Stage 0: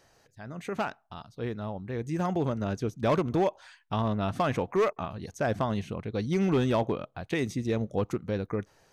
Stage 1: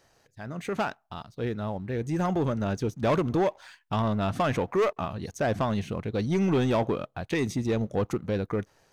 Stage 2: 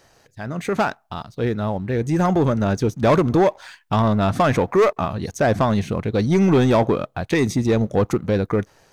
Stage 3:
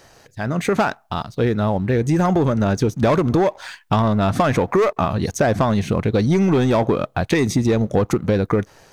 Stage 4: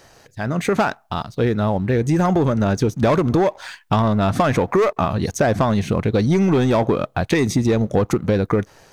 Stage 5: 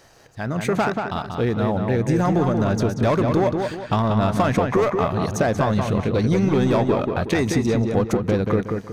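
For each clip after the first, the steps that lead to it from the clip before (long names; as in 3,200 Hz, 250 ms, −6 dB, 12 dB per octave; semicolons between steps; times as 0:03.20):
leveller curve on the samples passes 1
dynamic equaliser 2,900 Hz, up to −5 dB, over −54 dBFS, Q 4.3; level +8.5 dB
downward compressor, threshold −20 dBFS, peak gain reduction 8 dB; level +6 dB
no processing that can be heard
feedback echo with a low-pass in the loop 184 ms, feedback 39%, low-pass 3,300 Hz, level −4.5 dB; level −3 dB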